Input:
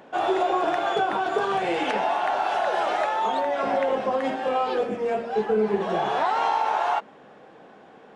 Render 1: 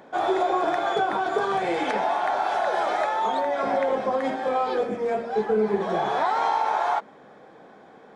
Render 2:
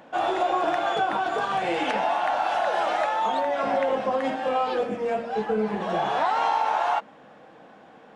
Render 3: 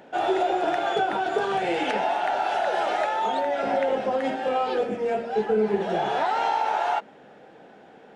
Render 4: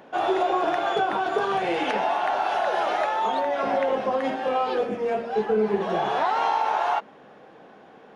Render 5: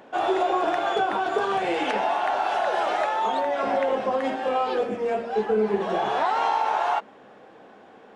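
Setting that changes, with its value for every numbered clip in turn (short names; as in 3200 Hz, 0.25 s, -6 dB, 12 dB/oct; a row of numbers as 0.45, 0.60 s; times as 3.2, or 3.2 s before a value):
notch, frequency: 2800, 400, 1100, 7700, 160 Hz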